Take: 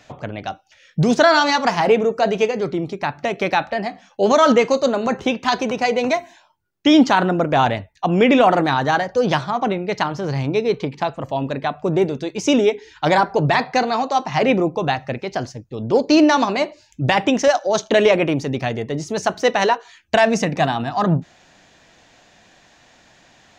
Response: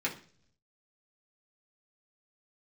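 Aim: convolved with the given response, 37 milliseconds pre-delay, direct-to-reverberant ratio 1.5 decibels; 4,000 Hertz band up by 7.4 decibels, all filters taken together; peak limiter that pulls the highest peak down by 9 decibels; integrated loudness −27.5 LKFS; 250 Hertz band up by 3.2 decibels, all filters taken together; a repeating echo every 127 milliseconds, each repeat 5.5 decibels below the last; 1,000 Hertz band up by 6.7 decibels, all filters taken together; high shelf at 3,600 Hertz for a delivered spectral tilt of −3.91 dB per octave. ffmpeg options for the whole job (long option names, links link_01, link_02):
-filter_complex "[0:a]equalizer=frequency=250:width_type=o:gain=3.5,equalizer=frequency=1000:width_type=o:gain=8,highshelf=frequency=3600:gain=4.5,equalizer=frequency=4000:width_type=o:gain=6,alimiter=limit=-6dB:level=0:latency=1,aecho=1:1:127|254|381|508|635|762|889:0.531|0.281|0.149|0.079|0.0419|0.0222|0.0118,asplit=2[link_01][link_02];[1:a]atrim=start_sample=2205,adelay=37[link_03];[link_02][link_03]afir=irnorm=-1:irlink=0,volume=-8dB[link_04];[link_01][link_04]amix=inputs=2:normalize=0,volume=-13.5dB"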